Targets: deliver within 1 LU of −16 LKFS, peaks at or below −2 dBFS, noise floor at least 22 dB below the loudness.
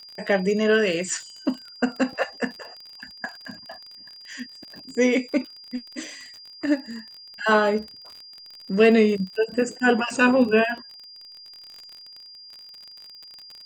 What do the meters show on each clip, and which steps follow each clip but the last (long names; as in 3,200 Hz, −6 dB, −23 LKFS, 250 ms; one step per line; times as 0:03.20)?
crackle rate 36 per second; interfering tone 4,800 Hz; level of the tone −42 dBFS; integrated loudness −22.5 LKFS; sample peak −5.0 dBFS; target loudness −16.0 LKFS
→ click removal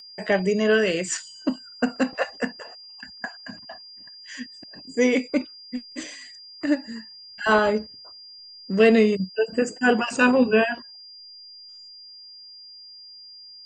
crackle rate 0.073 per second; interfering tone 4,800 Hz; level of the tone −42 dBFS
→ notch filter 4,800 Hz, Q 30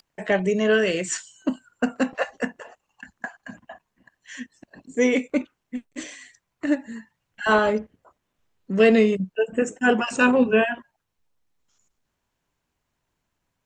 interfering tone none found; integrated loudness −22.5 LKFS; sample peak −5.0 dBFS; target loudness −16.0 LKFS
→ level +6.5 dB
brickwall limiter −2 dBFS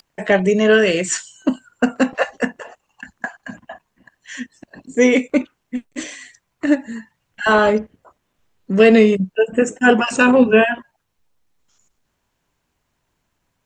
integrated loudness −16.5 LKFS; sample peak −2.0 dBFS; background noise floor −72 dBFS